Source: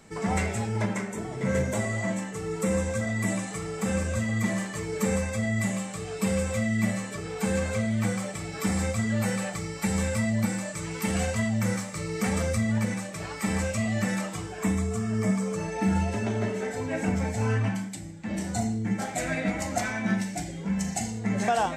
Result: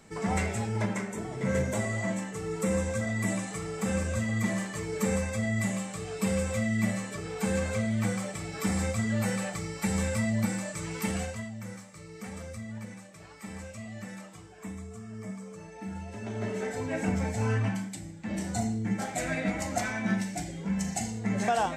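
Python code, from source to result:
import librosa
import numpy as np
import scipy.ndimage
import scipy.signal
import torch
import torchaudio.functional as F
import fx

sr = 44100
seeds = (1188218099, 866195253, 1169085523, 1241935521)

y = fx.gain(x, sr, db=fx.line((11.04, -2.0), (11.55, -14.0), (16.03, -14.0), (16.57, -2.0)))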